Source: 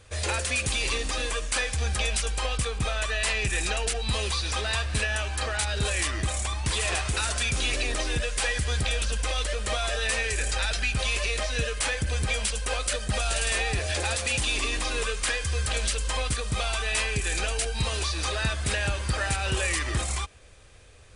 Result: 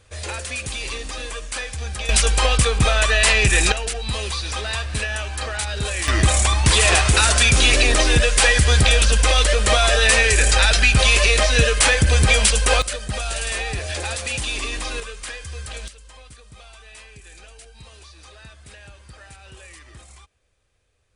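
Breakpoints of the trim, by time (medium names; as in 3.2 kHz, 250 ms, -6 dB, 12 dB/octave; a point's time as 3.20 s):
-1.5 dB
from 2.09 s +11 dB
from 3.72 s +2 dB
from 6.08 s +12 dB
from 12.82 s +1 dB
from 15.00 s -5.5 dB
from 15.88 s -16.5 dB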